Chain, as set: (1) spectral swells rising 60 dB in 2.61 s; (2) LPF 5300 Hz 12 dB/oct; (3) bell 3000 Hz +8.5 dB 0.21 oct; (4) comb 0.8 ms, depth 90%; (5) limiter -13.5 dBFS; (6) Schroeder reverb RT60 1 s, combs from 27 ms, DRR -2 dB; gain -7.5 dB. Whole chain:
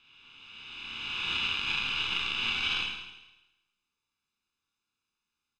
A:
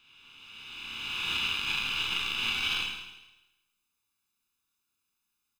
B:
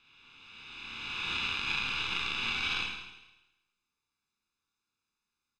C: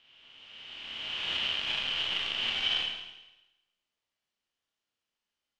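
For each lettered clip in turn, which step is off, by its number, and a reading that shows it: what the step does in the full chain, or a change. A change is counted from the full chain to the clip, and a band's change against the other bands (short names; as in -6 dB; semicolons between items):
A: 2, 8 kHz band +6.0 dB; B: 3, 4 kHz band -4.5 dB; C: 4, 500 Hz band +8.0 dB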